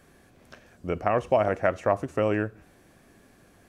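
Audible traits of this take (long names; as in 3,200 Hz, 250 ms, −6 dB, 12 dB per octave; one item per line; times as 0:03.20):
background noise floor −58 dBFS
spectral slope −3.0 dB per octave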